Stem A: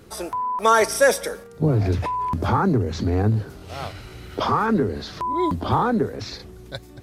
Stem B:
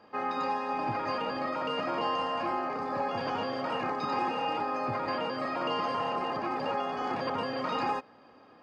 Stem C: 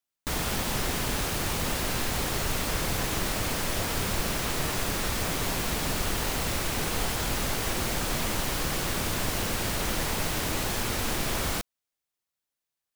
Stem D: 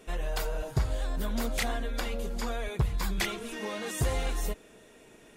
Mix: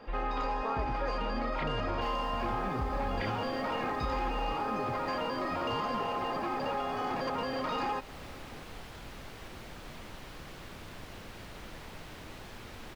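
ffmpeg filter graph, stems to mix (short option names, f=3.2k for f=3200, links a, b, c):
-filter_complex "[0:a]lowpass=1.4k,volume=-14.5dB[a];[1:a]aeval=exprs='0.119*sin(PI/2*1.58*val(0)/0.119)':c=same,volume=-4dB[b];[2:a]acrossover=split=4500[c][d];[d]acompressor=threshold=-45dB:ratio=4:attack=1:release=60[e];[c][e]amix=inputs=2:normalize=0,adelay=1750,volume=-16dB[f];[3:a]lowpass=f=2.9k:w=0.5412,lowpass=f=2.9k:w=1.3066,aecho=1:1:3.7:0.65,volume=-3.5dB[g];[a][b][f][g]amix=inputs=4:normalize=0,acompressor=threshold=-34dB:ratio=2"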